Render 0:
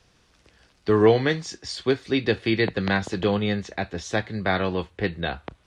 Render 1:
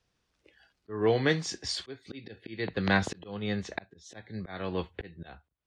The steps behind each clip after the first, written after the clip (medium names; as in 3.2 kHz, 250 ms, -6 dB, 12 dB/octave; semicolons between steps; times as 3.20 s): slow attack 575 ms; spectral noise reduction 16 dB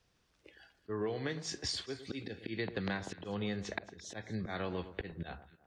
compression 12:1, threshold -36 dBFS, peak gain reduction 17 dB; echo whose repeats swap between lows and highs 109 ms, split 1.4 kHz, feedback 53%, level -12 dB; trim +2.5 dB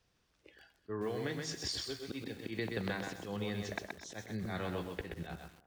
bit-crushed delay 127 ms, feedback 35%, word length 9-bit, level -4 dB; trim -1.5 dB